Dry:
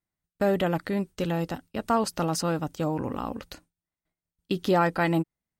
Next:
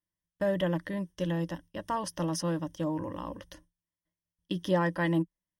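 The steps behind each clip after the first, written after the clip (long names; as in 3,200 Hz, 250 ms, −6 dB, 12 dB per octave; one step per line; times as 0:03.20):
EQ curve with evenly spaced ripples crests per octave 1.2, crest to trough 13 dB
level −7.5 dB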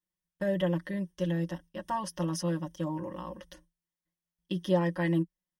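comb filter 5.5 ms, depth 82%
level −4 dB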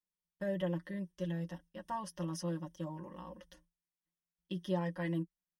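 flanger 0.59 Hz, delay 4 ms, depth 1.8 ms, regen −47%
level −4 dB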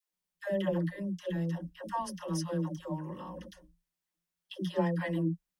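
all-pass dispersion lows, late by 121 ms, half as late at 480 Hz
level +5 dB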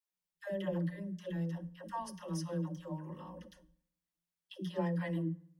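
convolution reverb RT60 0.75 s, pre-delay 3 ms, DRR 15 dB
level −6 dB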